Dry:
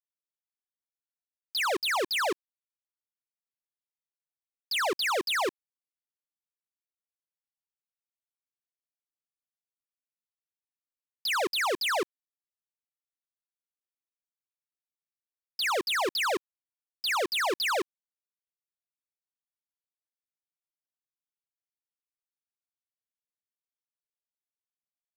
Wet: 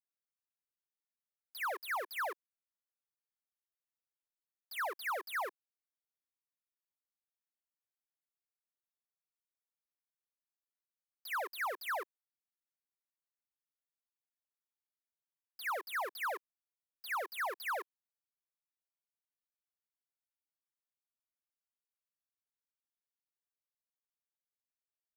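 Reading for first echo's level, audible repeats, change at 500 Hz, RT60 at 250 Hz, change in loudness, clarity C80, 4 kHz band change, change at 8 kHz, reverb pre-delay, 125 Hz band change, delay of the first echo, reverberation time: no echo audible, no echo audible, −12.5 dB, no reverb audible, −10.5 dB, no reverb audible, −19.5 dB, −15.5 dB, no reverb audible, can't be measured, no echo audible, no reverb audible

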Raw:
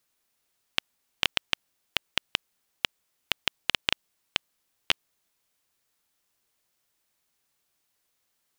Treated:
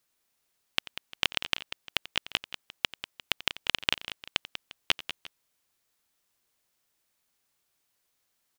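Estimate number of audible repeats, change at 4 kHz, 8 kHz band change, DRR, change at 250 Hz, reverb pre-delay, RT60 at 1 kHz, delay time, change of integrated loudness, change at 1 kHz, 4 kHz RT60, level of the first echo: 3, −0.5 dB, −0.5 dB, no reverb audible, −0.5 dB, no reverb audible, no reverb audible, 89 ms, −0.5 dB, −0.5 dB, no reverb audible, −17.5 dB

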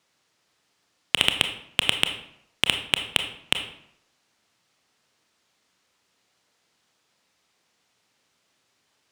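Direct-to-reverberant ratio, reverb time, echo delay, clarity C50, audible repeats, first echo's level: 6.0 dB, 0.75 s, no echo audible, 9.0 dB, no echo audible, no echo audible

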